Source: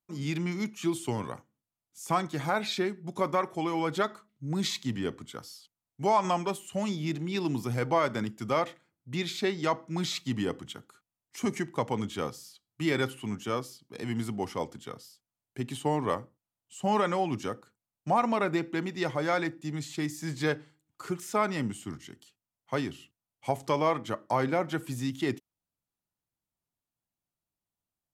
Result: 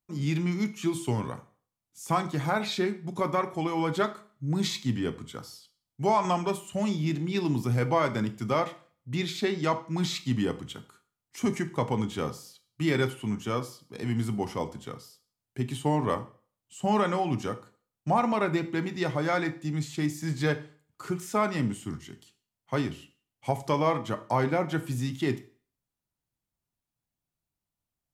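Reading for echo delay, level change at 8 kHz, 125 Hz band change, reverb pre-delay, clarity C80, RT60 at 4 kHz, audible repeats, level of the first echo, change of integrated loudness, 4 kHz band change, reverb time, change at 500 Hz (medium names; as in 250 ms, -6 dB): no echo, +0.5 dB, +5.0 dB, 7 ms, 20.0 dB, 0.40 s, no echo, no echo, +2.0 dB, +0.5 dB, 0.45 s, +1.0 dB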